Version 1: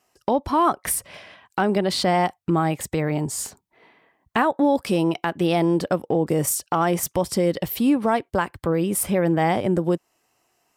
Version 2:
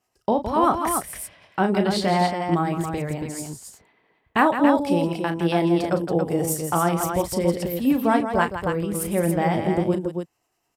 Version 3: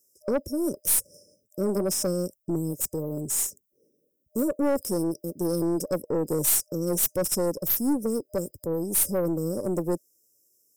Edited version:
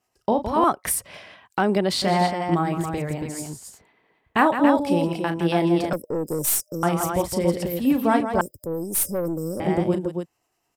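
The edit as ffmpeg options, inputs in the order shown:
-filter_complex "[2:a]asplit=2[s0][s1];[1:a]asplit=4[s2][s3][s4][s5];[s2]atrim=end=0.642[s6];[0:a]atrim=start=0.638:end=2.022[s7];[s3]atrim=start=2.018:end=5.932[s8];[s0]atrim=start=5.928:end=6.832[s9];[s4]atrim=start=6.828:end=8.412[s10];[s1]atrim=start=8.408:end=9.602[s11];[s5]atrim=start=9.598[s12];[s6][s7]acrossfade=d=0.004:c1=hsin:c2=hsin[s13];[s13][s8]acrossfade=d=0.004:c1=hsin:c2=hsin[s14];[s14][s9]acrossfade=d=0.004:c1=hsin:c2=hsin[s15];[s15][s10]acrossfade=d=0.004:c1=hsin:c2=hsin[s16];[s16][s11]acrossfade=d=0.004:c1=hsin:c2=hsin[s17];[s17][s12]acrossfade=d=0.004:c1=hsin:c2=hsin"

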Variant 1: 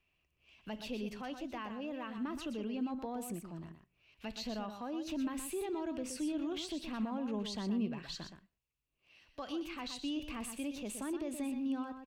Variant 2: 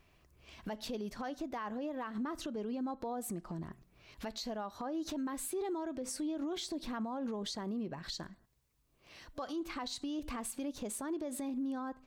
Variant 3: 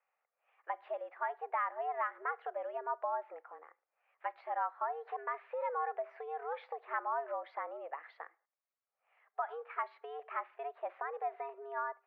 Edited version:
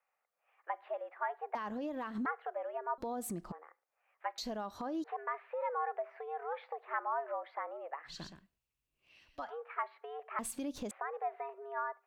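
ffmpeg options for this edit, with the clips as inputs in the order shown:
-filter_complex "[1:a]asplit=4[s0][s1][s2][s3];[2:a]asplit=6[s4][s5][s6][s7][s8][s9];[s4]atrim=end=1.552[s10];[s0]atrim=start=1.548:end=2.262[s11];[s5]atrim=start=2.258:end=2.982[s12];[s1]atrim=start=2.978:end=3.522[s13];[s6]atrim=start=3.518:end=4.382[s14];[s2]atrim=start=4.378:end=5.042[s15];[s7]atrim=start=5.038:end=8.2[s16];[0:a]atrim=start=8.04:end=9.51[s17];[s8]atrim=start=9.35:end=10.392[s18];[s3]atrim=start=10.388:end=10.912[s19];[s9]atrim=start=10.908[s20];[s10][s11]acrossfade=d=0.004:c1=hsin:c2=hsin[s21];[s21][s12]acrossfade=d=0.004:c1=hsin:c2=hsin[s22];[s22][s13]acrossfade=d=0.004:c1=hsin:c2=hsin[s23];[s23][s14]acrossfade=d=0.004:c1=hsin:c2=hsin[s24];[s24][s15]acrossfade=d=0.004:c1=hsin:c2=hsin[s25];[s25][s16]acrossfade=d=0.004:c1=hsin:c2=hsin[s26];[s26][s17]acrossfade=d=0.16:c1=tri:c2=tri[s27];[s27][s18]acrossfade=d=0.16:c1=tri:c2=tri[s28];[s28][s19]acrossfade=d=0.004:c1=hsin:c2=hsin[s29];[s29][s20]acrossfade=d=0.004:c1=hsin:c2=hsin"

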